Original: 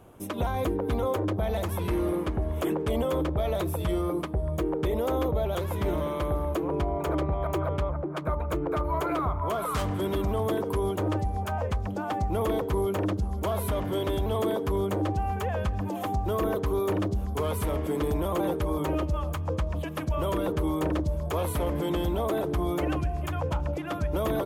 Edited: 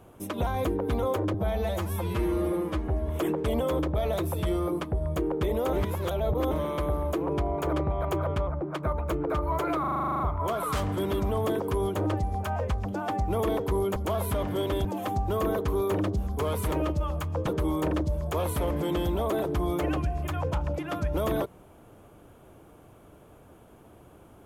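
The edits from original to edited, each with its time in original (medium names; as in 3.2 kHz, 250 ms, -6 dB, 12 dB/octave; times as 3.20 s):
1.34–2.50 s: stretch 1.5×
5.15–5.93 s: reverse
9.22 s: stutter 0.04 s, 11 plays
12.98–13.33 s: delete
14.22–15.83 s: delete
17.70–18.85 s: delete
19.60–20.46 s: delete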